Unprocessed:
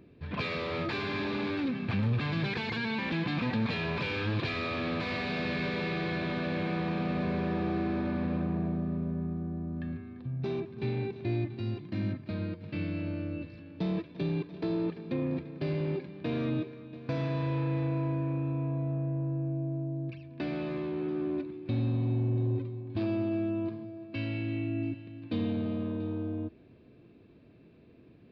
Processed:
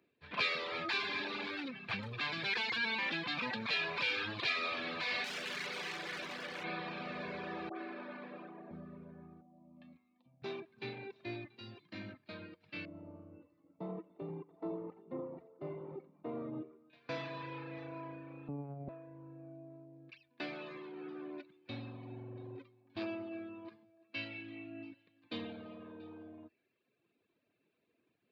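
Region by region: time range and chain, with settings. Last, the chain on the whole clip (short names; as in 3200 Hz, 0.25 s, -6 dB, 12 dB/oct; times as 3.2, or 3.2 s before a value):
5.24–6.64 hard clip -32.5 dBFS + Doppler distortion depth 0.21 ms
7.69–8.71 HPF 220 Hz 24 dB/oct + air absorption 130 m + dispersion highs, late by 70 ms, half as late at 1500 Hz
9.41–10.42 LPF 4400 Hz + fixed phaser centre 410 Hz, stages 6
12.85–16.9 polynomial smoothing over 65 samples + tapped delay 86/291/787 ms -10/-13/-18.5 dB
18.48–18.89 tilt shelf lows +9 dB, about 680 Hz + LPC vocoder at 8 kHz pitch kept
whole clip: HPF 1200 Hz 6 dB/oct; reverb removal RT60 1.1 s; three-band expander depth 40%; gain +2.5 dB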